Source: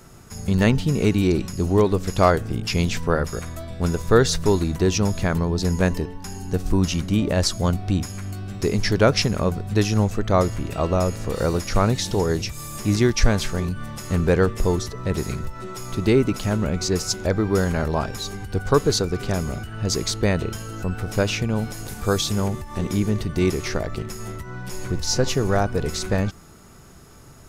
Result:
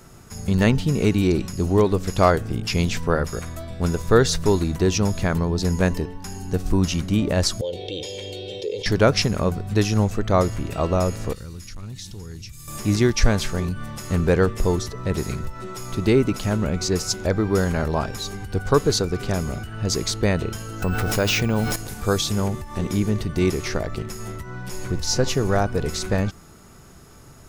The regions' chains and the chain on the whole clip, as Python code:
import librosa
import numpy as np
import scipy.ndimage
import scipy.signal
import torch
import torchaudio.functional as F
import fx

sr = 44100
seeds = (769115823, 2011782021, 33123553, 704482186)

y = fx.chain(x, sr, fx.double_bandpass(hz=1300.0, octaves=2.7),
    fx.comb(ms=2.2, depth=0.71),
    fx.env_flatten(amount_pct=70), at=(7.61, 8.86))
y = fx.chain(y, sr, fx.tone_stack(knobs='6-0-2'),
    fx.clip_hard(threshold_db=-31.5),
    fx.env_flatten(amount_pct=50), at=(11.33, 12.68))
y = fx.chain(y, sr, fx.low_shelf(hz=400.0, db=-4.0),
    fx.resample_bad(factor=2, down='none', up='hold'),
    fx.env_flatten(amount_pct=70), at=(20.82, 21.76))